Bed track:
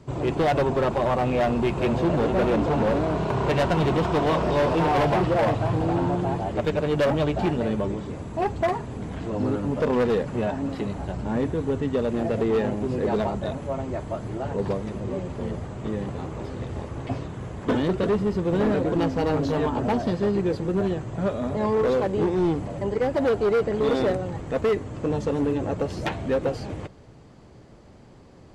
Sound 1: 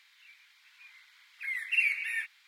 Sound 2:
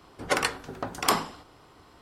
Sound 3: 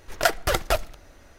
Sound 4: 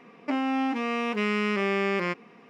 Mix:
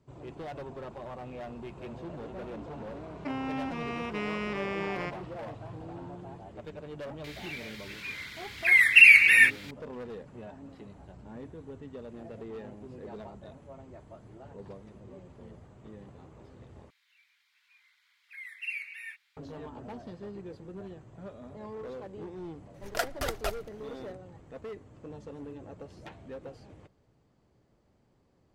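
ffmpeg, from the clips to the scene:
-filter_complex "[1:a]asplit=2[s0][s1];[0:a]volume=0.112[s2];[s0]alimiter=level_in=10:limit=0.891:release=50:level=0:latency=1[s3];[s2]asplit=2[s4][s5];[s4]atrim=end=16.904[s6];[s1]atrim=end=2.47,asetpts=PTS-STARTPTS,volume=0.335[s7];[s5]atrim=start=19.366[s8];[4:a]atrim=end=2.49,asetpts=PTS-STARTPTS,volume=0.398,afade=t=in:d=0.004:c=hsin,afade=t=out:st=2.486:d=0.004:c=hsin,adelay=2970[s9];[s3]atrim=end=2.47,asetpts=PTS-STARTPTS,volume=0.596,afade=t=in:d=0.004:c=hsin,afade=t=out:st=2.466:d=0.004:c=hsin,adelay=7240[s10];[3:a]atrim=end=1.38,asetpts=PTS-STARTPTS,volume=0.316,afade=t=in:d=0.004:c=hsin,afade=t=out:st=1.376:d=0.004:c=hsin,adelay=22740[s11];[s6][s7]acrossfade=d=0.004:c1=hsin:c2=hsin[s12];[s12][s8]acrossfade=d=0.004:c1=hsin:c2=hsin[s13];[s13][s9][s10][s11]amix=inputs=4:normalize=0"

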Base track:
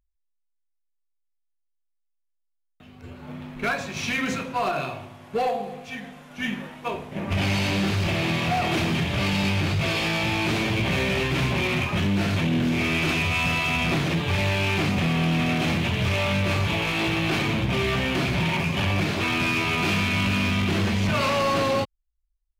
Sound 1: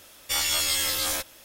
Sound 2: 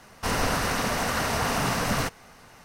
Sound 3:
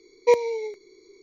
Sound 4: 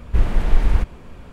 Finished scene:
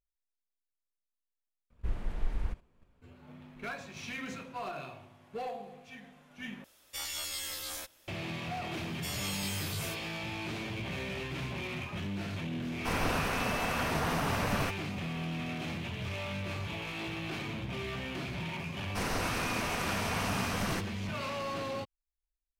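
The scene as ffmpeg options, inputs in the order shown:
-filter_complex "[1:a]asplit=2[s0][s1];[2:a]asplit=2[s2][s3];[0:a]volume=0.2[s4];[4:a]agate=range=0.282:threshold=0.02:ratio=16:release=100:detection=peak[s5];[s1]afreqshift=-97[s6];[s2]equalizer=f=6800:w=0.48:g=-6[s7];[s4]asplit=3[s8][s9][s10];[s8]atrim=end=1.704[s11];[s5]atrim=end=1.32,asetpts=PTS-STARTPTS,volume=0.141[s12];[s9]atrim=start=3.016:end=6.644[s13];[s0]atrim=end=1.44,asetpts=PTS-STARTPTS,volume=0.224[s14];[s10]atrim=start=8.076[s15];[s6]atrim=end=1.44,asetpts=PTS-STARTPTS,volume=0.2,afade=t=in:d=0.004:c=hsin,afade=t=out:st=1.436:d=0.004:c=hsin,adelay=8730[s16];[s7]atrim=end=2.64,asetpts=PTS-STARTPTS,volume=0.531,afade=t=in:d=0.004:c=hsin,afade=t=out:st=2.636:d=0.004:c=hsin,adelay=12620[s17];[s3]atrim=end=2.64,asetpts=PTS-STARTPTS,volume=0.376,afade=t=in:d=0.004:c=hsin,afade=t=out:st=2.636:d=0.004:c=hsin,adelay=18720[s18];[s11][s12]acrossfade=d=0.004:c1=hsin:c2=hsin[s19];[s19][s13]acrossfade=d=0.004:c1=hsin:c2=hsin[s20];[s20][s14]acrossfade=d=0.004:c1=hsin:c2=hsin[s21];[s21][s15]acrossfade=d=0.004:c1=hsin:c2=hsin[s22];[s22][s16][s17][s18]amix=inputs=4:normalize=0"

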